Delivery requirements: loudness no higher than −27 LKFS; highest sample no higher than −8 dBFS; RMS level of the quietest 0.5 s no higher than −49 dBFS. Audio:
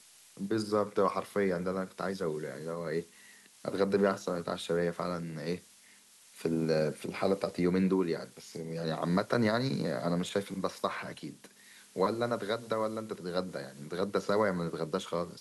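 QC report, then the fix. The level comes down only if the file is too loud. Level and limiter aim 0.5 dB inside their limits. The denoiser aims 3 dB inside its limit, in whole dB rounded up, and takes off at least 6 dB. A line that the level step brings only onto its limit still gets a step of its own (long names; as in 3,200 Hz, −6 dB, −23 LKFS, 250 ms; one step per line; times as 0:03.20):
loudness −33.0 LKFS: in spec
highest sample −14.5 dBFS: in spec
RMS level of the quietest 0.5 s −59 dBFS: in spec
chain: no processing needed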